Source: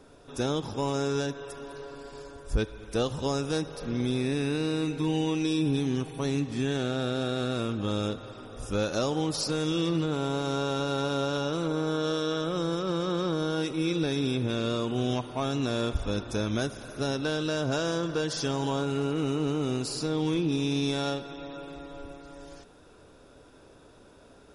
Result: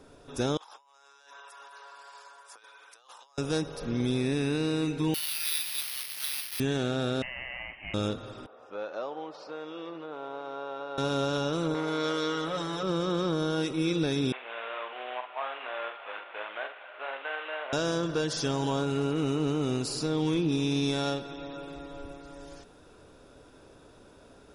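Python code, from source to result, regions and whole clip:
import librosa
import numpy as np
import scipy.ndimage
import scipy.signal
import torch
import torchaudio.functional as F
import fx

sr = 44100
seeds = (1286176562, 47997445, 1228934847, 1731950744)

y = fx.chain(x, sr, fx.ladder_highpass(hz=810.0, resonance_pct=40),
    fx.over_compress(threshold_db=-54.0, ratio=-1.0), at=(0.57, 3.38))
y = fx.chain(y, sr, fx.delta_mod(bps=32000, step_db=-32.0),
    fx.steep_highpass(hz=1900.0, slope=48),
    fx.resample_bad(factor=6, down='none', up='zero_stuff'), at=(5.14, 6.6))
y = fx.chain(y, sr, fx.highpass(hz=740.0, slope=24),
    fx.freq_invert(carrier_hz=3400), at=(7.22, 7.94))
y = fx.chain(y, sr, fx.cheby1_highpass(hz=690.0, order=2),
    fx.spacing_loss(db_at_10k=43), at=(8.46, 10.98))
y = fx.chain(y, sr, fx.bass_treble(bass_db=-10, treble_db=-2),
    fx.comb(ms=7.0, depth=0.87),
    fx.transformer_sat(knee_hz=970.0), at=(11.74, 12.83))
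y = fx.chain(y, sr, fx.cvsd(bps=16000),
    fx.highpass(hz=660.0, slope=24),
    fx.doubler(ms=48.0, db=-7), at=(14.32, 17.73))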